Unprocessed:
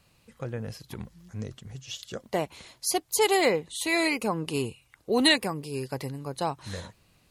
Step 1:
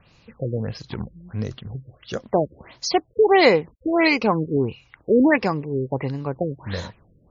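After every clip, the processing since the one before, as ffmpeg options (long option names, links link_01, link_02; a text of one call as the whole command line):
ffmpeg -i in.wav -af "afftfilt=real='re*lt(b*sr/1024,550*pow(7300/550,0.5+0.5*sin(2*PI*1.5*pts/sr)))':imag='im*lt(b*sr/1024,550*pow(7300/550,0.5+0.5*sin(2*PI*1.5*pts/sr)))':win_size=1024:overlap=0.75,volume=8.5dB" out.wav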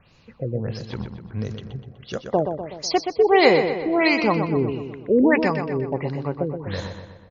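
ffmpeg -i in.wav -filter_complex "[0:a]asplit=2[link_01][link_02];[link_02]adelay=124,lowpass=frequency=4400:poles=1,volume=-7dB,asplit=2[link_03][link_04];[link_04]adelay=124,lowpass=frequency=4400:poles=1,volume=0.55,asplit=2[link_05][link_06];[link_06]adelay=124,lowpass=frequency=4400:poles=1,volume=0.55,asplit=2[link_07][link_08];[link_08]adelay=124,lowpass=frequency=4400:poles=1,volume=0.55,asplit=2[link_09][link_10];[link_10]adelay=124,lowpass=frequency=4400:poles=1,volume=0.55,asplit=2[link_11][link_12];[link_12]adelay=124,lowpass=frequency=4400:poles=1,volume=0.55,asplit=2[link_13][link_14];[link_14]adelay=124,lowpass=frequency=4400:poles=1,volume=0.55[link_15];[link_01][link_03][link_05][link_07][link_09][link_11][link_13][link_15]amix=inputs=8:normalize=0,volume=-1dB" out.wav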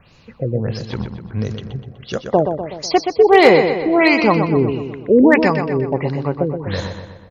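ffmpeg -i in.wav -filter_complex "[0:a]acrossover=split=3000[link_01][link_02];[link_02]alimiter=limit=-24dB:level=0:latency=1:release=221[link_03];[link_01][link_03]amix=inputs=2:normalize=0,volume=7dB,asoftclip=hard,volume=-7dB,volume=6dB" out.wav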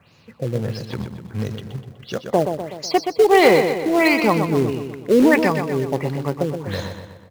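ffmpeg -i in.wav -filter_complex "[0:a]highpass=frequency=80:width=0.5412,highpass=frequency=80:width=1.3066,asplit=2[link_01][link_02];[link_02]acrusher=bits=2:mode=log:mix=0:aa=0.000001,volume=-5dB[link_03];[link_01][link_03]amix=inputs=2:normalize=0,volume=-7dB" out.wav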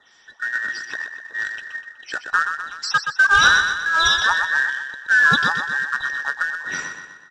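ffmpeg -i in.wav -af "afftfilt=real='real(if(between(b,1,1012),(2*floor((b-1)/92)+1)*92-b,b),0)':imag='imag(if(between(b,1,1012),(2*floor((b-1)/92)+1)*92-b,b),0)*if(between(b,1,1012),-1,1)':win_size=2048:overlap=0.75,lowpass=frequency=6100:width_type=q:width=1.7,lowshelf=frequency=100:gain=-9.5,volume=-2dB" out.wav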